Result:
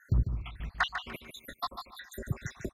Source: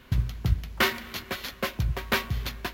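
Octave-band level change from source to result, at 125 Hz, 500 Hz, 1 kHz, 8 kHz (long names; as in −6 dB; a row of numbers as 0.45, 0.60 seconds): −5.0, −11.0, −4.0, −10.5 decibels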